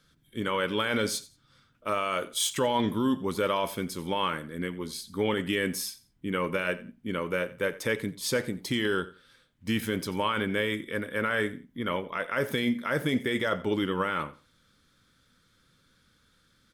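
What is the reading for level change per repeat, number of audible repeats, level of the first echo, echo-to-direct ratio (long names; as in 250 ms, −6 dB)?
−13.0 dB, 2, −18.5 dB, −18.5 dB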